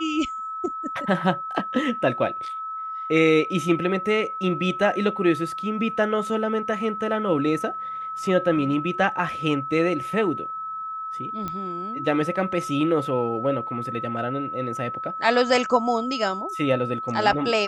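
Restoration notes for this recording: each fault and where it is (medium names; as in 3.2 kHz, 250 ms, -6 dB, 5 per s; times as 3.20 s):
whine 1.3 kHz -29 dBFS
11.48 s: pop -17 dBFS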